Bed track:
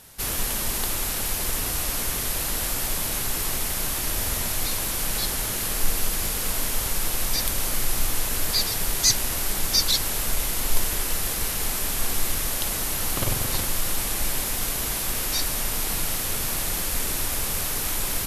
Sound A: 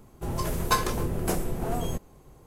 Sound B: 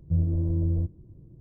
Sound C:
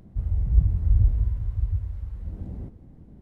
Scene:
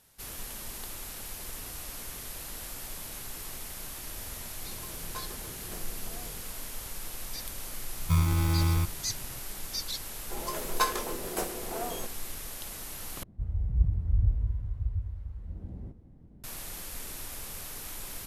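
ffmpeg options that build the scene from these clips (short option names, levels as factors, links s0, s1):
-filter_complex "[1:a]asplit=2[s0][s1];[0:a]volume=0.2[s2];[2:a]acrusher=samples=38:mix=1:aa=0.000001[s3];[s1]highpass=350[s4];[s2]asplit=2[s5][s6];[s5]atrim=end=13.234[s7];[3:a]atrim=end=3.21,asetpts=PTS-STARTPTS,volume=0.501[s8];[s6]atrim=start=16.436[s9];[s0]atrim=end=2.46,asetpts=PTS-STARTPTS,volume=0.126,afade=t=in:d=0.004:c=hsin,afade=t=out:st=2.456:d=0.004:c=hsin,adelay=4440[s10];[s3]atrim=end=1.4,asetpts=PTS-STARTPTS,volume=0.944,afade=t=in:d=0.004:c=hsin,afade=t=out:st=1.396:d=0.004:c=hsin,adelay=7990[s11];[s4]atrim=end=2.46,asetpts=PTS-STARTPTS,volume=0.75,afade=t=in:d=0.004:c=hsin,afade=t=out:st=2.456:d=0.004:c=hsin,adelay=10090[s12];[s7][s8]acrossfade=d=0.004:c1=hsin:c2=hsin[s13];[s13][s9]acrossfade=d=0.004:c1=hsin:c2=hsin[s14];[s14][s10][s11][s12]amix=inputs=4:normalize=0"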